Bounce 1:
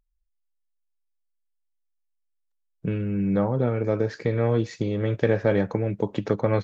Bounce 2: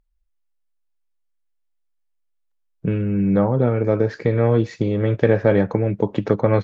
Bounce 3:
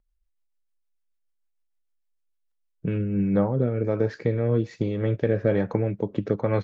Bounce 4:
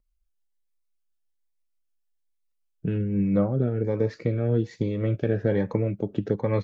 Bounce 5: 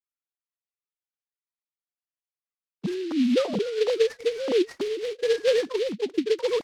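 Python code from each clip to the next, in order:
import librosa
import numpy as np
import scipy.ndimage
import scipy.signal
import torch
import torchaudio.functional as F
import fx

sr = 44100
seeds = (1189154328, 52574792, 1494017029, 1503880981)

y1 = fx.high_shelf(x, sr, hz=4100.0, db=-10.0)
y1 = F.gain(torch.from_numpy(y1), 5.5).numpy()
y2 = fx.rider(y1, sr, range_db=10, speed_s=2.0)
y2 = fx.rotary_switch(y2, sr, hz=6.7, then_hz=1.2, switch_at_s=2.38)
y2 = F.gain(torch.from_numpy(y2), -4.0).numpy()
y3 = fx.notch_cascade(y2, sr, direction='rising', hz=1.2)
y4 = fx.sine_speech(y3, sr)
y4 = fx.noise_mod_delay(y4, sr, seeds[0], noise_hz=3000.0, depth_ms=0.06)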